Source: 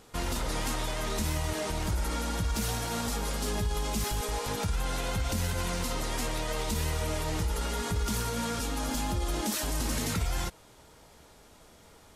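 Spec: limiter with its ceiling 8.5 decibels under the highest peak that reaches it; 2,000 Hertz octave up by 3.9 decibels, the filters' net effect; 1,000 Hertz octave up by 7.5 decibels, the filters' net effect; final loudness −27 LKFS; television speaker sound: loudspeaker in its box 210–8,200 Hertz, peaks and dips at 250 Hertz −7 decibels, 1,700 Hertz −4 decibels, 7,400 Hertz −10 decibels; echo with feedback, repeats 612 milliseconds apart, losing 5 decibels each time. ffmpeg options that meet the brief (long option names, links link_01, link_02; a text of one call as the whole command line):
ffmpeg -i in.wav -af "equalizer=frequency=1000:width_type=o:gain=8.5,equalizer=frequency=2000:width_type=o:gain=4.5,alimiter=level_in=1dB:limit=-24dB:level=0:latency=1,volume=-1dB,highpass=frequency=210:width=0.5412,highpass=frequency=210:width=1.3066,equalizer=frequency=250:width_type=q:width=4:gain=-7,equalizer=frequency=1700:width_type=q:width=4:gain=-4,equalizer=frequency=7400:width_type=q:width=4:gain=-10,lowpass=frequency=8200:width=0.5412,lowpass=frequency=8200:width=1.3066,aecho=1:1:612|1224|1836|2448|3060|3672|4284:0.562|0.315|0.176|0.0988|0.0553|0.031|0.0173,volume=7.5dB" out.wav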